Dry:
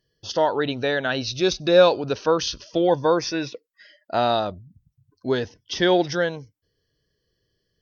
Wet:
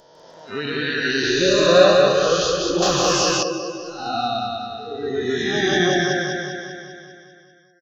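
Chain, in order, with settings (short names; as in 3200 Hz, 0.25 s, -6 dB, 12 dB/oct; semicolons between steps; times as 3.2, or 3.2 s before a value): spectral swells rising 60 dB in 2.63 s; bell 160 Hz +6.5 dB 0.44 oct; spectral noise reduction 26 dB; on a send: feedback echo 0.197 s, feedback 60%, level -3 dB; on the sum: echoes that change speed 0.152 s, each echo +1 st, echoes 2; 2.82–3.43 spectral compressor 2:1; gain -3.5 dB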